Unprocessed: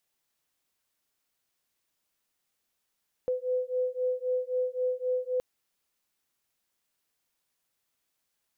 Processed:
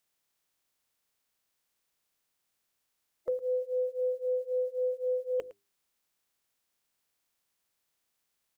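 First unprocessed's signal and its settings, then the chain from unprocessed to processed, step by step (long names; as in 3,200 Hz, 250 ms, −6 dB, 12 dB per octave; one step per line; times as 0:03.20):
two tones that beat 503 Hz, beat 3.8 Hz, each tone −30 dBFS 2.12 s
spectral magnitudes quantised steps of 30 dB
mains-hum notches 50/100/150/200/250/300/350/400 Hz
single-tap delay 110 ms −17 dB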